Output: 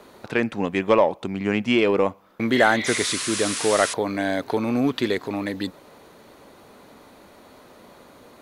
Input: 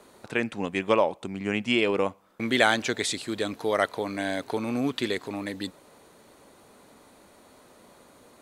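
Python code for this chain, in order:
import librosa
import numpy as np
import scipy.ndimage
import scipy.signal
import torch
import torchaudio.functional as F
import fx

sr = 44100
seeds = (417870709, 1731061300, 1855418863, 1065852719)

p1 = fx.dynamic_eq(x, sr, hz=3000.0, q=1.1, threshold_db=-42.0, ratio=4.0, max_db=-4)
p2 = fx.spec_repair(p1, sr, seeds[0], start_s=2.57, length_s=0.38, low_hz=1900.0, high_hz=4700.0, source='both')
p3 = fx.peak_eq(p2, sr, hz=8500.0, db=-9.0, octaves=0.75)
p4 = fx.spec_paint(p3, sr, seeds[1], shape='noise', start_s=2.86, length_s=1.08, low_hz=960.0, high_hz=11000.0, level_db=-35.0)
p5 = 10.0 ** (-17.5 / 20.0) * np.tanh(p4 / 10.0 ** (-17.5 / 20.0))
p6 = p4 + F.gain(torch.from_numpy(p5), -3.0).numpy()
y = F.gain(torch.from_numpy(p6), 1.5).numpy()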